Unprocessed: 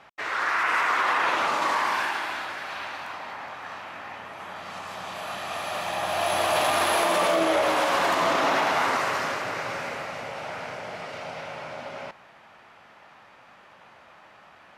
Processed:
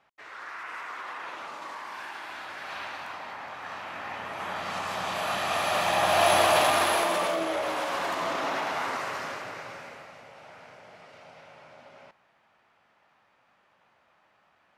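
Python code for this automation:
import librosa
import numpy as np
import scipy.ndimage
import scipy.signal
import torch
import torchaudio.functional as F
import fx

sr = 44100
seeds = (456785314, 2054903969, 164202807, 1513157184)

y = fx.gain(x, sr, db=fx.line((1.86, -15.0), (2.74, -2.5), (3.43, -2.5), (4.48, 4.5), (6.28, 4.5), (7.47, -7.0), (9.37, -7.0), (10.23, -14.0)))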